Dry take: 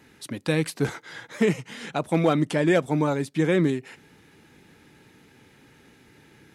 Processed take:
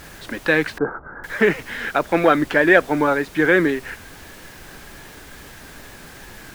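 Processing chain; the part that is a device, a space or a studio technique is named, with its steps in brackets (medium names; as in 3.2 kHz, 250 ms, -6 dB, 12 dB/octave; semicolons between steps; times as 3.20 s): horn gramophone (band-pass 300–3300 Hz; peaking EQ 1.6 kHz +11.5 dB 0.48 oct; wow and flutter; pink noise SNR 20 dB); 0.78–1.24 s: elliptic low-pass 1.3 kHz, stop band 60 dB; trim +6.5 dB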